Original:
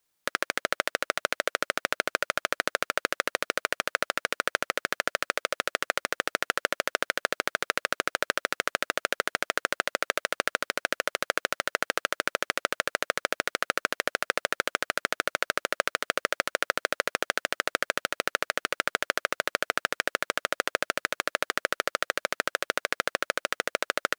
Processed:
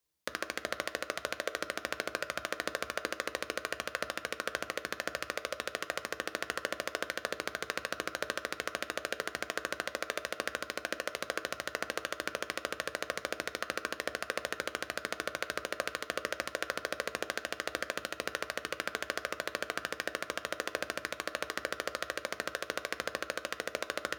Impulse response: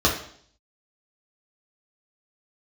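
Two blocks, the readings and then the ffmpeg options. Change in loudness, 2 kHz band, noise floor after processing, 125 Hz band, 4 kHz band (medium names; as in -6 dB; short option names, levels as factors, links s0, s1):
-7.5 dB, -8.0 dB, -51 dBFS, -2.0 dB, -7.0 dB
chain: -filter_complex "[0:a]asplit=2[s0][s1];[1:a]atrim=start_sample=2205,lowshelf=f=170:g=12,highshelf=f=11000:g=5[s2];[s1][s2]afir=irnorm=-1:irlink=0,volume=0.0596[s3];[s0][s3]amix=inputs=2:normalize=0,volume=0.398"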